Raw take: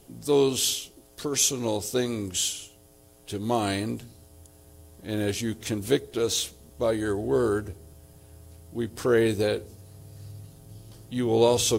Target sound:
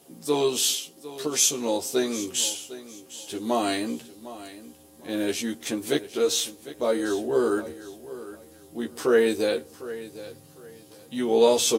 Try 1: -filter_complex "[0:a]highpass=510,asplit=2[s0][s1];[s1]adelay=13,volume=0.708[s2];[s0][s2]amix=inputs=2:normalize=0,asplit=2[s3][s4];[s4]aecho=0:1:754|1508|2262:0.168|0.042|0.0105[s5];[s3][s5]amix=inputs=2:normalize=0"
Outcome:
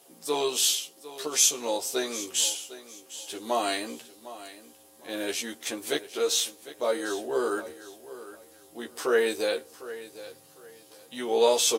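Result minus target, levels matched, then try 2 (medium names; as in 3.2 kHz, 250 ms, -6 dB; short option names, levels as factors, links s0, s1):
250 Hz band -6.5 dB
-filter_complex "[0:a]highpass=230,asplit=2[s0][s1];[s1]adelay=13,volume=0.708[s2];[s0][s2]amix=inputs=2:normalize=0,asplit=2[s3][s4];[s4]aecho=0:1:754|1508|2262:0.168|0.042|0.0105[s5];[s3][s5]amix=inputs=2:normalize=0"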